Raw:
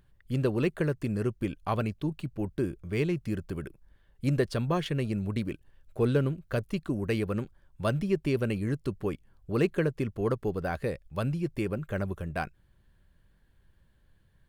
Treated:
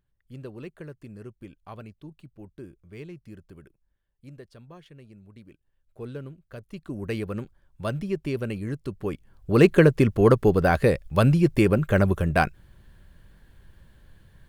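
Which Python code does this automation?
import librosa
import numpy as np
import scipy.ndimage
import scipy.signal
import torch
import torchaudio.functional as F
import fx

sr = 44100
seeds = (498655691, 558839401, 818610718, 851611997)

y = fx.gain(x, sr, db=fx.line((3.62, -12.5), (4.36, -19.0), (5.3, -19.0), (6.0, -11.5), (6.58, -11.5), (7.05, -1.0), (8.9, -1.0), (9.73, 11.5)))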